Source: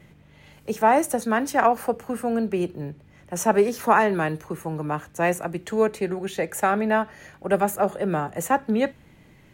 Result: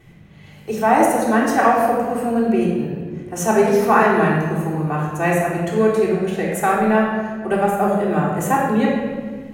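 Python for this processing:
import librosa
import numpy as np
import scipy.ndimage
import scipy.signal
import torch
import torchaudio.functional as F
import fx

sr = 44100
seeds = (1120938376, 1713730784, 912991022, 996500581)

y = fx.transient(x, sr, attack_db=0, sustain_db=-8, at=(6.29, 7.79), fade=0.02)
y = fx.room_shoebox(y, sr, seeds[0], volume_m3=1800.0, walls='mixed', distance_m=3.5)
y = y * librosa.db_to_amplitude(-1.0)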